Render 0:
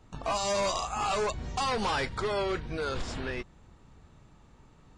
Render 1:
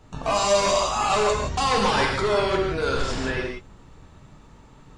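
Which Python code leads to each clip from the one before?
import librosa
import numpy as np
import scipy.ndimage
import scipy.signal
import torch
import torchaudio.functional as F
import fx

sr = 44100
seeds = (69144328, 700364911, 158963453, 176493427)

y = fx.rev_gated(x, sr, seeds[0], gate_ms=200, shape='flat', drr_db=0.0)
y = y * librosa.db_to_amplitude(5.5)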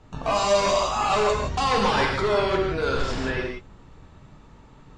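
y = fx.air_absorb(x, sr, metres=61.0)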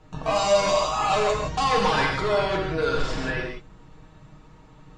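y = x + 0.54 * np.pad(x, (int(6.4 * sr / 1000.0), 0))[:len(x)]
y = y * librosa.db_to_amplitude(-1.5)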